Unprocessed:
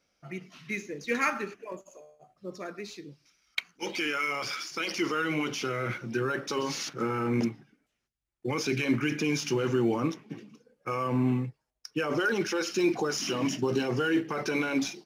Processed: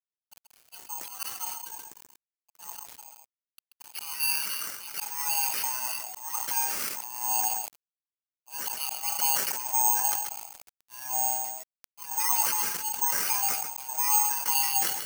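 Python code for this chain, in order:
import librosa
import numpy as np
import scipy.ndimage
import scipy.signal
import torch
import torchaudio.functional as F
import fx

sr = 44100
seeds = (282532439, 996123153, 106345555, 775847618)

y = fx.band_swap(x, sr, width_hz=500)
y = scipy.signal.sosfilt(scipy.signal.butter(2, 700.0, 'highpass', fs=sr, output='sos'), y)
y = fx.auto_swell(y, sr, attack_ms=294.0)
y = fx.fixed_phaser(y, sr, hz=2700.0, stages=8)
y = np.sign(y) * np.maximum(np.abs(y) - 10.0 ** (-53.5 / 20.0), 0.0)
y = y + 10.0 ** (-15.5 / 20.0) * np.pad(y, (int(133 * sr / 1000.0), 0))[:len(y)]
y = (np.kron(y[::6], np.eye(6)[0]) * 6)[:len(y)]
y = fx.sustainer(y, sr, db_per_s=48.0)
y = y * 10.0 ** (-1.0 / 20.0)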